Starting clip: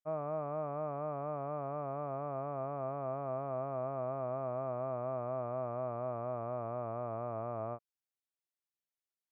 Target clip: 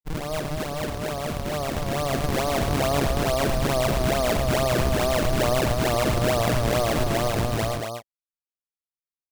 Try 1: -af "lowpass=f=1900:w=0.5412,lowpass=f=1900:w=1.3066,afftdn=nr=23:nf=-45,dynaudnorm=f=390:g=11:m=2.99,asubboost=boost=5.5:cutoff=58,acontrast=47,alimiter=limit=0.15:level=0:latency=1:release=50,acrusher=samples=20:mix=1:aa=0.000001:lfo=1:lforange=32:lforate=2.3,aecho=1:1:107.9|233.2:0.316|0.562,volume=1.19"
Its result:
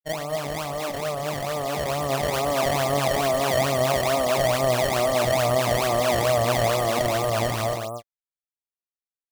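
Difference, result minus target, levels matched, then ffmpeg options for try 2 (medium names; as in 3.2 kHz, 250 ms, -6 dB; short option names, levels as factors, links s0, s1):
decimation with a swept rate: distortion -7 dB
-af "lowpass=f=1900:w=0.5412,lowpass=f=1900:w=1.3066,afftdn=nr=23:nf=-45,dynaudnorm=f=390:g=11:m=2.99,asubboost=boost=5.5:cutoff=58,acontrast=47,alimiter=limit=0.15:level=0:latency=1:release=50,acrusher=samples=41:mix=1:aa=0.000001:lfo=1:lforange=65.6:lforate=2.3,aecho=1:1:107.9|233.2:0.316|0.562,volume=1.19"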